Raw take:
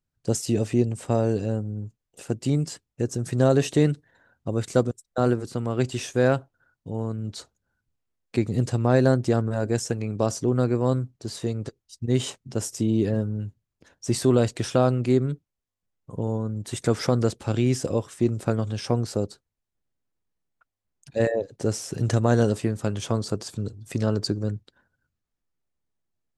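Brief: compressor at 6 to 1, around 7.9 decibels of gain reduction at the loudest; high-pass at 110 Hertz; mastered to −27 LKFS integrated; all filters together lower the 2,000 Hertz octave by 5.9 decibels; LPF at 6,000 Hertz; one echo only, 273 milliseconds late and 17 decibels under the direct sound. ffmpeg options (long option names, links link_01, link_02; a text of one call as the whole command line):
ffmpeg -i in.wav -af "highpass=110,lowpass=6000,equalizer=frequency=2000:width_type=o:gain=-8.5,acompressor=threshold=-23dB:ratio=6,aecho=1:1:273:0.141,volume=4dB" out.wav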